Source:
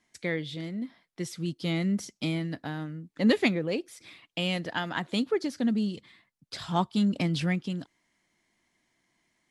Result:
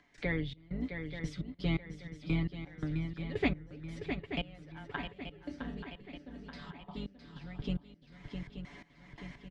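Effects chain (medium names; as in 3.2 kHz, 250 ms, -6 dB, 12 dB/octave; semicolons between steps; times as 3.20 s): octave divider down 2 oct, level -3 dB; low-pass 3 kHz 12 dB/octave; comb 7 ms, depth 71%; upward compressor, threshold -38 dBFS; 4.96–7.36 s: chord resonator C2 major, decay 0.37 s; trance gate ".xx.x..x.x...x." 85 bpm -24 dB; shuffle delay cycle 880 ms, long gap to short 3:1, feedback 40%, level -10 dB; three bands compressed up and down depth 40%; trim -2.5 dB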